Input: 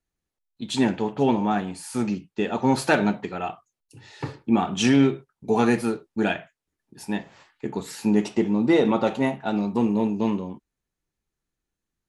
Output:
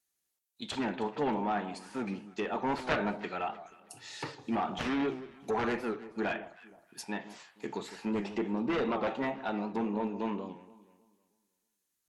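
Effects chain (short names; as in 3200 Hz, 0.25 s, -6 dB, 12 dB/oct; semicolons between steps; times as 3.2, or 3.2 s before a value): RIAA curve recording; added harmonics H 7 -8 dB, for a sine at -3.5 dBFS; treble ducked by the level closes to 1900 Hz, closed at -22.5 dBFS; echo with dull and thin repeats by turns 0.158 s, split 1100 Hz, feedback 53%, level -13 dB; record warp 78 rpm, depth 100 cents; gain -8 dB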